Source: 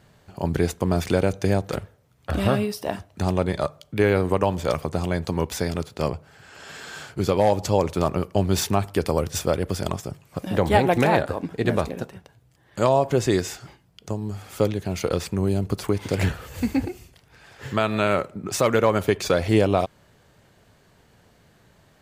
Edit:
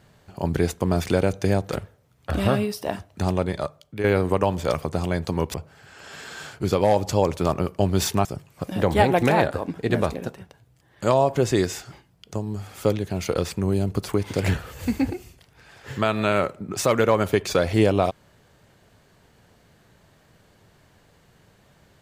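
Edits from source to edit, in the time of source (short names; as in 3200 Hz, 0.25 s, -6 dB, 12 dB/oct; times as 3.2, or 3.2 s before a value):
3.26–4.04 fade out linear, to -8.5 dB
5.54–6.1 cut
8.81–10 cut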